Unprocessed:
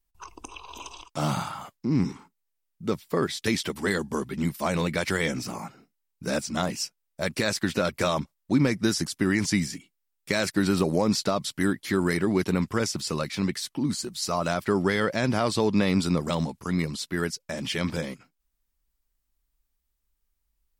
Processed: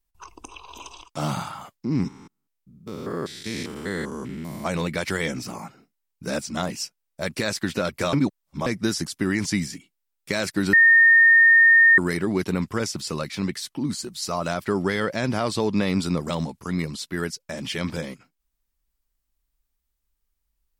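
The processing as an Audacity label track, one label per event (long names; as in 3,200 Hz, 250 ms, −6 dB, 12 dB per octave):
2.080000	4.660000	spectrum averaged block by block every 200 ms
8.130000	8.660000	reverse
10.730000	11.980000	beep over 1,830 Hz −10.5 dBFS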